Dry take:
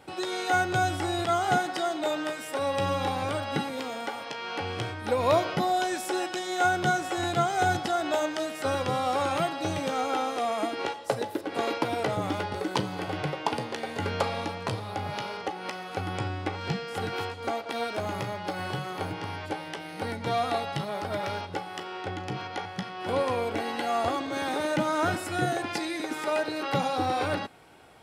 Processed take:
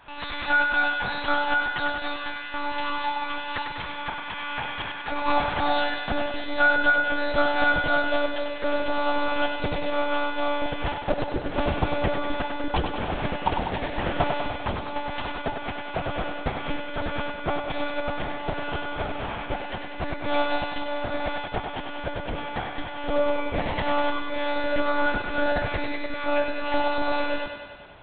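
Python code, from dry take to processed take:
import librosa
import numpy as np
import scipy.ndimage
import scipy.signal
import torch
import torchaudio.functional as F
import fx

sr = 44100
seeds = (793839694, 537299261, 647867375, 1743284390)

y = fx.filter_sweep_highpass(x, sr, from_hz=950.0, to_hz=180.0, start_s=5.32, end_s=6.93, q=1.0)
y = fx.lpc_monotone(y, sr, seeds[0], pitch_hz=290.0, order=8)
y = fx.echo_thinned(y, sr, ms=98, feedback_pct=67, hz=210.0, wet_db=-6.0)
y = y * librosa.db_to_amplitude(4.0)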